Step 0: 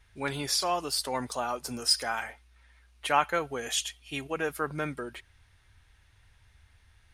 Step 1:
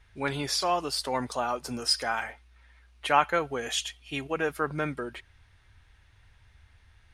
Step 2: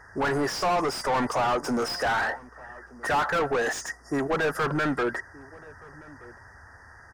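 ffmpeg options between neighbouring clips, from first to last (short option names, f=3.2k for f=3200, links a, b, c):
-af "highshelf=f=7.4k:g=-10.5,volume=2.5dB"
-filter_complex "[0:a]afftfilt=real='re*(1-between(b*sr/4096,2000,4700))':imag='im*(1-between(b*sr/4096,2000,4700))':win_size=4096:overlap=0.75,asplit=2[a][b];[b]highpass=f=720:p=1,volume=36dB,asoftclip=type=tanh:threshold=-8dB[c];[a][c]amix=inputs=2:normalize=0,lowpass=f=1.5k:p=1,volume=-6dB,asplit=2[d][e];[e]adelay=1224,volume=-21dB,highshelf=f=4k:g=-27.6[f];[d][f]amix=inputs=2:normalize=0,volume=-7.5dB"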